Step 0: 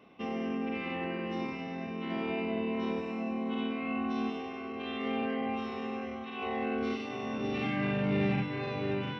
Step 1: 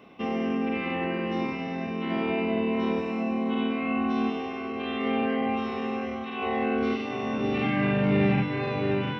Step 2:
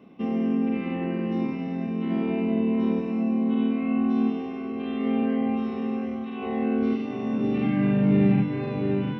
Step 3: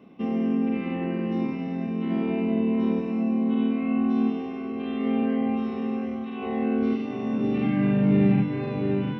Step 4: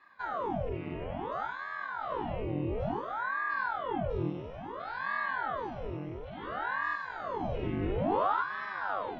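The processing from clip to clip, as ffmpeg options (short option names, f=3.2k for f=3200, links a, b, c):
-filter_complex "[0:a]acrossover=split=3500[a][b];[b]acompressor=threshold=-58dB:ratio=4:attack=1:release=60[c];[a][c]amix=inputs=2:normalize=0,volume=6.5dB"
-af "equalizer=f=210:w=0.6:g=13,volume=-8dB"
-af anull
-af "aeval=exprs='val(0)*sin(2*PI*750*n/s+750*0.9/0.58*sin(2*PI*0.58*n/s))':c=same,volume=-6.5dB"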